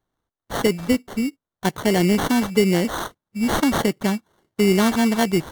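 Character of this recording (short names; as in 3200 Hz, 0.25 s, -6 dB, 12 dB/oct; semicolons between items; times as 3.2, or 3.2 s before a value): aliases and images of a low sample rate 2500 Hz, jitter 0%; AAC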